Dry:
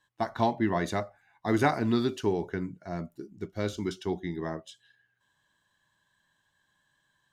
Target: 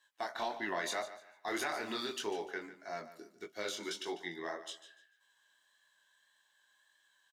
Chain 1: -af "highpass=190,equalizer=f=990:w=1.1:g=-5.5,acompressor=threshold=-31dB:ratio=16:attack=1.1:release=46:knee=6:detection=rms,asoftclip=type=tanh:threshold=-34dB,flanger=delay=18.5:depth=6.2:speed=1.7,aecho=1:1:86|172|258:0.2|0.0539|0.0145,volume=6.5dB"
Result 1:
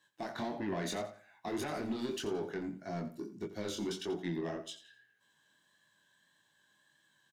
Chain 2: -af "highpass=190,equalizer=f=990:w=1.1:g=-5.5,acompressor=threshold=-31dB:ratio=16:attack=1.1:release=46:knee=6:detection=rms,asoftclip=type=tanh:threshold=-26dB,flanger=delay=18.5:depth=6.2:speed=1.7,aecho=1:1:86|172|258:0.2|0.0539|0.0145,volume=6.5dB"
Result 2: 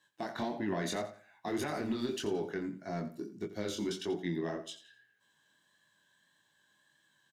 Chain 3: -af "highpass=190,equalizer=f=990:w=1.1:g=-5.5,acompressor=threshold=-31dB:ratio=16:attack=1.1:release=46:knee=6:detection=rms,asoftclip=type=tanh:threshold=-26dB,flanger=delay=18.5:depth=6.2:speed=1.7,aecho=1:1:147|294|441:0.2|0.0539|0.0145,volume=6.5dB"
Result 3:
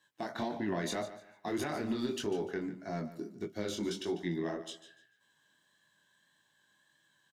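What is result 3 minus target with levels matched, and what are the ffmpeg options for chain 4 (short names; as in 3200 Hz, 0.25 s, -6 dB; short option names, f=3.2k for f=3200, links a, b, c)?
250 Hz band +7.0 dB
-af "highpass=730,equalizer=f=990:w=1.1:g=-5.5,acompressor=threshold=-31dB:ratio=16:attack=1.1:release=46:knee=6:detection=rms,asoftclip=type=tanh:threshold=-26dB,flanger=delay=18.5:depth=6.2:speed=1.7,aecho=1:1:147|294|441:0.2|0.0539|0.0145,volume=6.5dB"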